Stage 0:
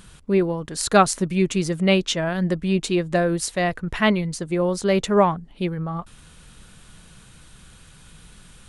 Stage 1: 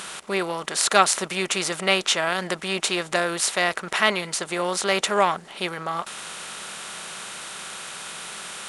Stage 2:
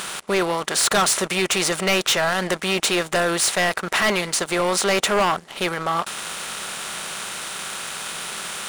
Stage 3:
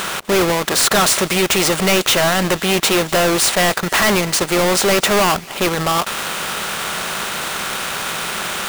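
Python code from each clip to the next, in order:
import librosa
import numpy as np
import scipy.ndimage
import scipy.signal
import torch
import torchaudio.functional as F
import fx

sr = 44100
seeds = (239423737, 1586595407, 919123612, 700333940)

y1 = fx.bin_compress(x, sr, power=0.6)
y1 = fx.highpass(y1, sr, hz=1300.0, slope=6)
y1 = y1 * librosa.db_to_amplitude(2.0)
y2 = fx.leveller(y1, sr, passes=2)
y2 = 10.0 ** (-14.5 / 20.0) * np.tanh(y2 / 10.0 ** (-14.5 / 20.0))
y3 = fx.halfwave_hold(y2, sr)
y3 = fx.echo_wet_highpass(y3, sr, ms=248, feedback_pct=61, hz=1900.0, wet_db=-19.5)
y3 = y3 * librosa.db_to_amplitude(2.5)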